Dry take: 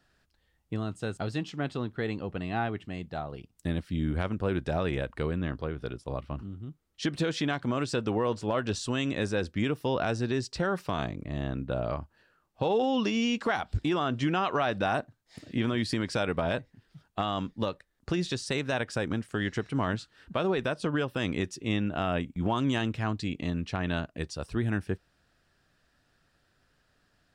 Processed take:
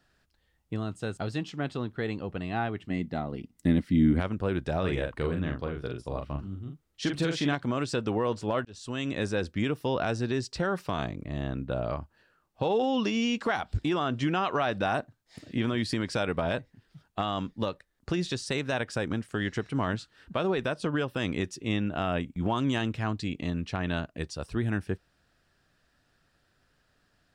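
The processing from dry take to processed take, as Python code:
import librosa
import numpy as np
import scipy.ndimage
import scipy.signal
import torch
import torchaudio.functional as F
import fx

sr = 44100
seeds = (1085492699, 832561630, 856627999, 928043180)

y = fx.small_body(x, sr, hz=(240.0, 2000.0), ring_ms=25, db=12, at=(2.9, 4.2))
y = fx.doubler(y, sr, ms=42.0, db=-5.0, at=(4.82, 7.54), fade=0.02)
y = fx.edit(y, sr, fx.fade_in_span(start_s=8.65, length_s=0.68, curve='qsin'), tone=tone)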